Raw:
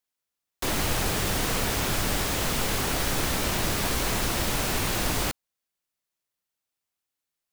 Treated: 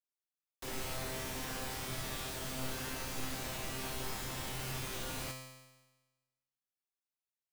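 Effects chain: resonator 130 Hz, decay 1.2 s, harmonics all, mix 90%; gain +1 dB

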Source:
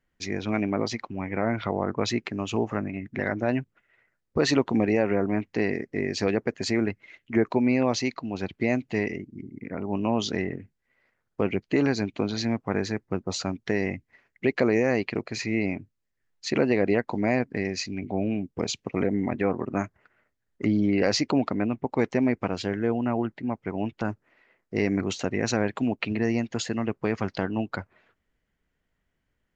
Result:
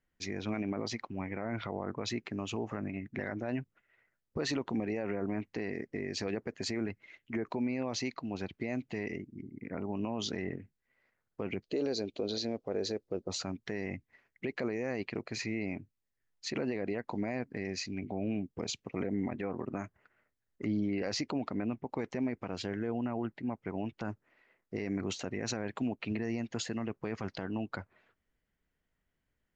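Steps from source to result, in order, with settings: 11.64–13.28 graphic EQ 125/250/500/1000/2000/4000 Hz -8/-3/+11/-8/-9/+8 dB; limiter -19 dBFS, peak gain reduction 9.5 dB; gain -5.5 dB

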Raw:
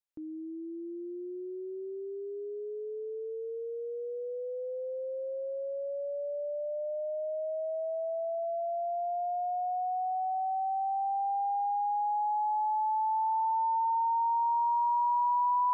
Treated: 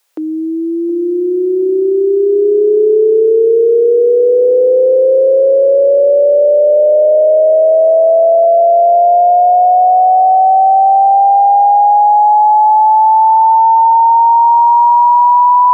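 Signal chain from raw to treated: HPF 400 Hz 24 dB/oct; dark delay 0.72 s, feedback 77%, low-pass 540 Hz, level -10 dB; maximiser +33.5 dB; gain -2.5 dB

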